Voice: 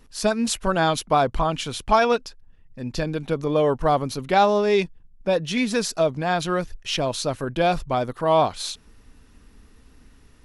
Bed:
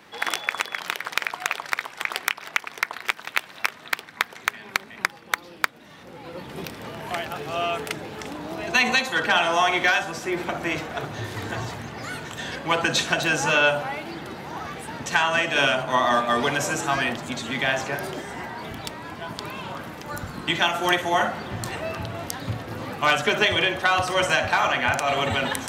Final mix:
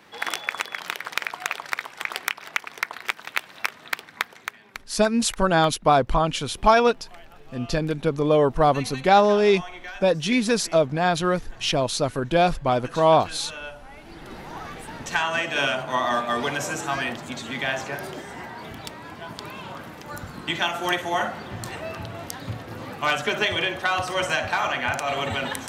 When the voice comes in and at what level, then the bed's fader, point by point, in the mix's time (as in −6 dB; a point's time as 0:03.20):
4.75 s, +1.5 dB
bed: 0:04.18 −2 dB
0:05.01 −18 dB
0:13.81 −18 dB
0:14.35 −3 dB